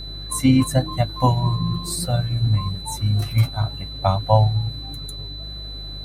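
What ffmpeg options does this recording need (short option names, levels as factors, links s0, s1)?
-af "bandreject=f=50.6:t=h:w=4,bandreject=f=101.2:t=h:w=4,bandreject=f=151.8:t=h:w=4,bandreject=f=4000:w=30"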